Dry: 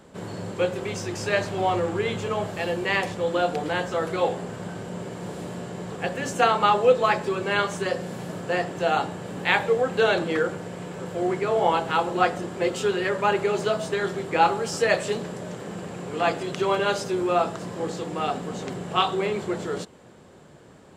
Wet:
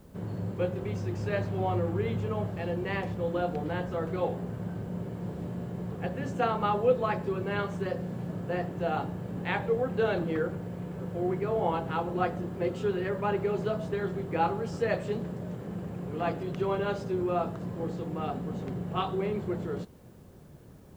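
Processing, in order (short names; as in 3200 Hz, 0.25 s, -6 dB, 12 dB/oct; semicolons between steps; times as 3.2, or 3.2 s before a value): RIAA curve playback; requantised 10-bit, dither triangular; gain -9 dB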